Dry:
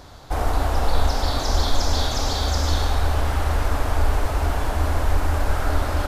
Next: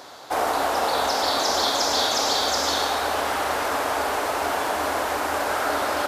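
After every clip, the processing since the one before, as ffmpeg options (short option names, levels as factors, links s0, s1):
-af "highpass=390,volume=1.78"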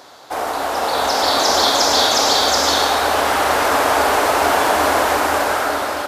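-af "dynaudnorm=f=300:g=7:m=3.76"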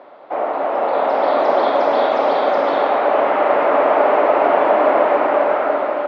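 -af "highpass=f=170:w=0.5412,highpass=f=170:w=1.3066,equalizer=f=350:t=q:w=4:g=3,equalizer=f=590:t=q:w=4:g=9,equalizer=f=1600:t=q:w=4:g=-6,lowpass=f=2300:w=0.5412,lowpass=f=2300:w=1.3066,volume=0.891"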